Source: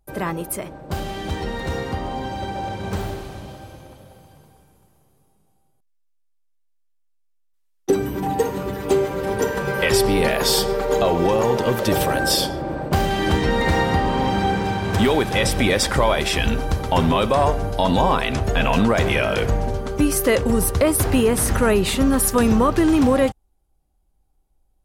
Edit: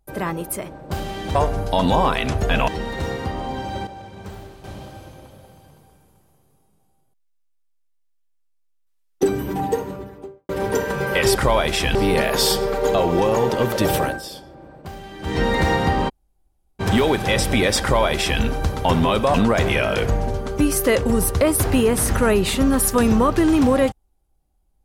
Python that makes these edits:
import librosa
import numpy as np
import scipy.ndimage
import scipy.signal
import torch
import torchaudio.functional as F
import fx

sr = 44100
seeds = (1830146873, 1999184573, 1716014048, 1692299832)

y = fx.studio_fade_out(x, sr, start_s=8.15, length_s=1.01)
y = fx.edit(y, sr, fx.clip_gain(start_s=2.54, length_s=0.77, db=-10.0),
    fx.fade_down_up(start_s=12.1, length_s=1.37, db=-16.0, fade_s=0.18),
    fx.room_tone_fill(start_s=14.16, length_s=0.71, crossfade_s=0.02),
    fx.duplicate(start_s=15.88, length_s=0.6, to_s=10.02),
    fx.move(start_s=17.41, length_s=1.33, to_s=1.35), tone=tone)